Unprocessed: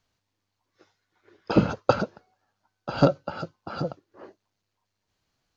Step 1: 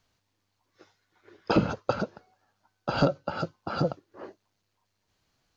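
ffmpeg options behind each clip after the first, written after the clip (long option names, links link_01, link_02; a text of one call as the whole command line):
ffmpeg -i in.wav -af "alimiter=limit=-13dB:level=0:latency=1:release=365,volume=3dB" out.wav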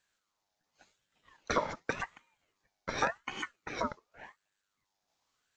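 ffmpeg -i in.wav -af "equalizer=frequency=5500:width_type=o:width=0.42:gain=8.5,aeval=exprs='val(0)*sin(2*PI*1200*n/s+1200*0.4/0.89*sin(2*PI*0.89*n/s))':channel_layout=same,volume=-5dB" out.wav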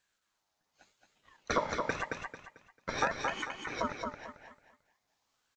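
ffmpeg -i in.wav -af "aecho=1:1:222|444|666|888:0.596|0.185|0.0572|0.0177" out.wav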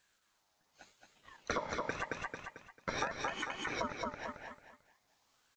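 ffmpeg -i in.wav -af "acompressor=threshold=-41dB:ratio=3,volume=5dB" out.wav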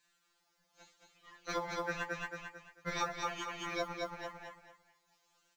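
ffmpeg -i in.wav -af "acrusher=bits=8:mode=log:mix=0:aa=0.000001,afftfilt=real='re*2.83*eq(mod(b,8),0)':imag='im*2.83*eq(mod(b,8),0)':win_size=2048:overlap=0.75,volume=2.5dB" out.wav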